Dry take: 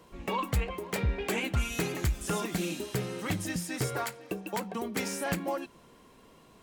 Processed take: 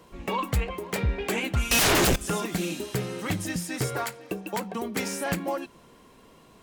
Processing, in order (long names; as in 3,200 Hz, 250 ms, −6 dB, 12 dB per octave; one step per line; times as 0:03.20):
0:01.71–0:02.16: sine wavefolder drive 16 dB, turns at −20.5 dBFS
level +3 dB